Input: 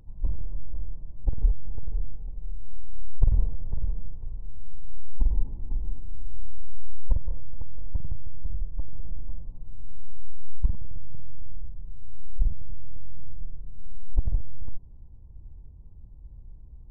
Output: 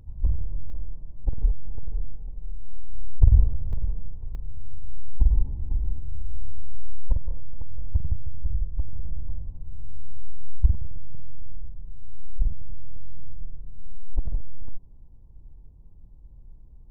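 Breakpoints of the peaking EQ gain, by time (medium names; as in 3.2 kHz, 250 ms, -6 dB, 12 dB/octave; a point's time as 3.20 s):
peaking EQ 73 Hz 1.4 oct
+8.5 dB
from 0.70 s 0 dB
from 2.91 s +12 dB
from 3.73 s +3 dB
from 4.35 s +10.5 dB
from 7.05 s +1.5 dB
from 7.70 s +9.5 dB
from 10.87 s +0.5 dB
from 13.94 s -5.5 dB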